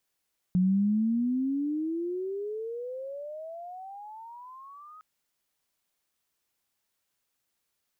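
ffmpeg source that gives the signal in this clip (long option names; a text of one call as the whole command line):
ffmpeg -f lavfi -i "aevalsrc='pow(10,(-20-26*t/4.46)/20)*sin(2*PI*179*4.46/(34*log(2)/12)*(exp(34*log(2)/12*t/4.46)-1))':duration=4.46:sample_rate=44100" out.wav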